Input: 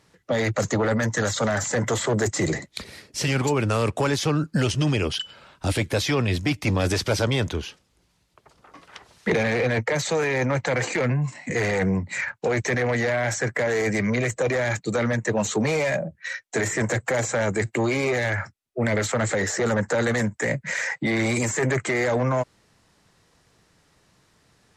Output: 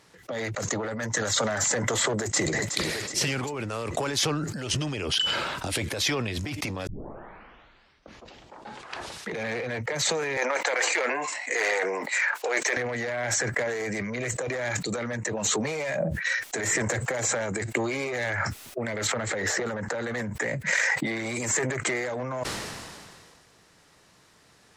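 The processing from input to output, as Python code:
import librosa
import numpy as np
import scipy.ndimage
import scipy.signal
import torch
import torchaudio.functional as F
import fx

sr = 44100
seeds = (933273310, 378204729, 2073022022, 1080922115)

y = fx.echo_throw(x, sr, start_s=2.2, length_s=0.43, ms=370, feedback_pct=70, wet_db=-17.5)
y = fx.bessel_highpass(y, sr, hz=570.0, order=6, at=(10.37, 12.77))
y = fx.peak_eq(y, sr, hz=7800.0, db=-7.5, octaves=1.2, at=(19.07, 20.49))
y = fx.edit(y, sr, fx.tape_start(start_s=6.87, length_s=2.43), tone=tone)
y = fx.over_compress(y, sr, threshold_db=-28.0, ratio=-1.0)
y = fx.low_shelf(y, sr, hz=210.0, db=-8.0)
y = fx.sustainer(y, sr, db_per_s=28.0)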